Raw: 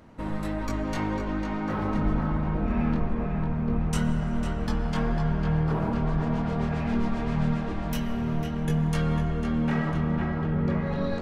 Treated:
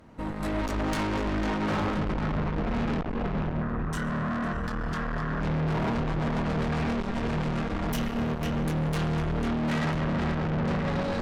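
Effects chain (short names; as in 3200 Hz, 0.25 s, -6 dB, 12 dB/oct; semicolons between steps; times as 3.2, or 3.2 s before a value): 4.1–4.53 small resonant body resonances 220/700 Hz, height 17 dB, ringing for 20 ms; AGC gain up to 14.5 dB; tube stage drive 24 dB, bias 0.4; 3.62–5.41 spectral gain 970–2000 Hz +8 dB; limiter -24.5 dBFS, peak gain reduction 7 dB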